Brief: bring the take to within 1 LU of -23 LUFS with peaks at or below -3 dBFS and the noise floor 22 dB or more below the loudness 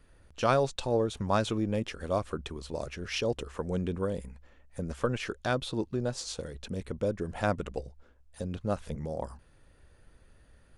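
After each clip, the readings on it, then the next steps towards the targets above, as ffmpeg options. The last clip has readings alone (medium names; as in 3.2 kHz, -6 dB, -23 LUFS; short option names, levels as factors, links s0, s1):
loudness -32.5 LUFS; peak level -11.5 dBFS; loudness target -23.0 LUFS
-> -af "volume=2.99,alimiter=limit=0.708:level=0:latency=1"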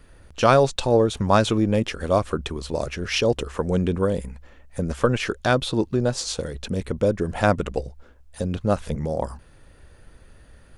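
loudness -23.0 LUFS; peak level -3.0 dBFS; noise floor -51 dBFS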